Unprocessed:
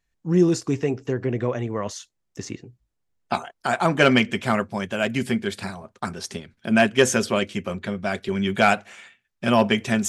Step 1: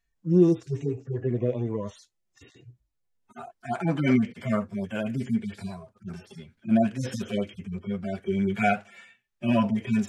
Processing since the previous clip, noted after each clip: harmonic-percussive separation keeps harmonic; trim -1 dB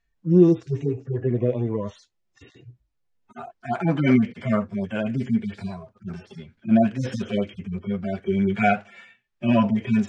distance through air 98 m; trim +4 dB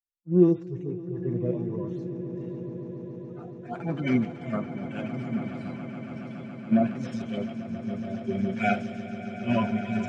echo with a slow build-up 140 ms, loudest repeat 8, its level -12 dB; three bands expanded up and down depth 70%; trim -8.5 dB

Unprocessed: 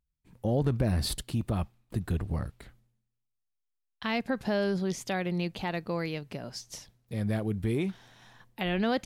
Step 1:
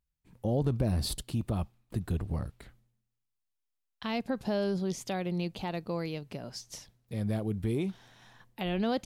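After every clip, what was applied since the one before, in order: dynamic bell 1.8 kHz, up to -7 dB, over -51 dBFS, Q 1.5; trim -1.5 dB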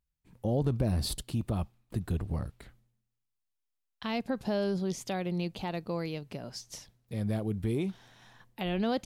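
no audible change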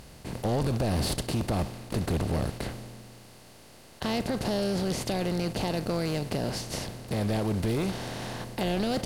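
spectral levelling over time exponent 0.4; overload inside the chain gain 22.5 dB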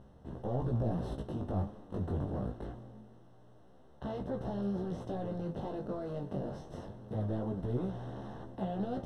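flange 0.57 Hz, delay 9.1 ms, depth 8.7 ms, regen +37%; boxcar filter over 19 samples; chorus 0.24 Hz, delay 15 ms, depth 6.1 ms

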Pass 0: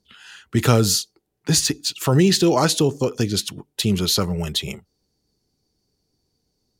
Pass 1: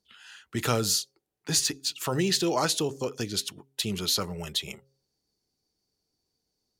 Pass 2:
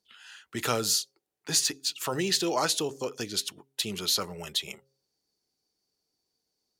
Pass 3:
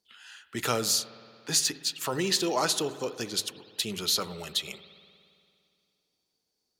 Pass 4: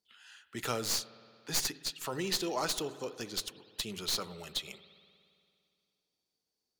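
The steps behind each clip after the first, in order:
bass shelf 370 Hz -8.5 dB; de-hum 135.1 Hz, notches 4; trim -5.5 dB
bass shelf 190 Hz -11 dB
hum notches 50/100 Hz; spring tank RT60 2.4 s, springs 57 ms, chirp 45 ms, DRR 13.5 dB
tracing distortion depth 0.049 ms; trim -6.5 dB

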